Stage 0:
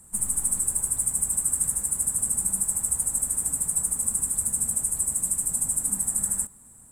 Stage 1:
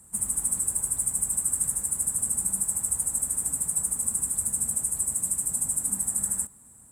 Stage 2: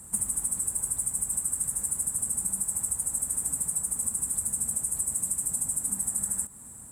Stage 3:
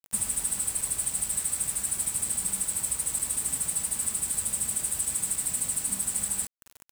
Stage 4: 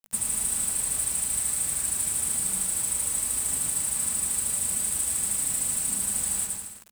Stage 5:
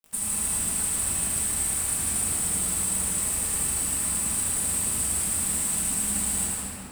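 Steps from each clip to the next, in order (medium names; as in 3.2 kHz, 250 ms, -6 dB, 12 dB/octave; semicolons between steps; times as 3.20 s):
high-pass 46 Hz; trim -1.5 dB
compression 10:1, threshold -32 dBFS, peak gain reduction 11.5 dB; trim +7 dB
bit crusher 6-bit
hum notches 50/100/150/200 Hz; bouncing-ball echo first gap 110 ms, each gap 0.8×, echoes 5
simulated room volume 210 m³, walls hard, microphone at 1.2 m; trim -4 dB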